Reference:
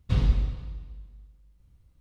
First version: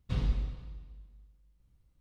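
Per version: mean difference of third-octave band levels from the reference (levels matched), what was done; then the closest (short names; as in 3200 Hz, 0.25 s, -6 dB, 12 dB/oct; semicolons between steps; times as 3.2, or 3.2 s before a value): 1.5 dB: bell 82 Hz -5.5 dB 0.75 oct; gain -6 dB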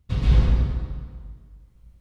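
7.0 dB: plate-style reverb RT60 1.5 s, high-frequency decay 0.5×, pre-delay 0.11 s, DRR -7.5 dB; gain -1.5 dB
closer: first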